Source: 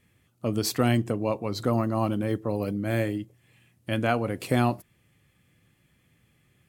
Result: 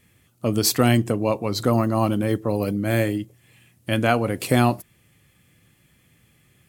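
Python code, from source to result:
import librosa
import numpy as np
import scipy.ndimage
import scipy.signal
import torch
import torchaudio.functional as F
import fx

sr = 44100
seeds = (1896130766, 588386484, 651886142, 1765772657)

y = fx.high_shelf(x, sr, hz=4700.0, db=6.0)
y = F.gain(torch.from_numpy(y), 5.0).numpy()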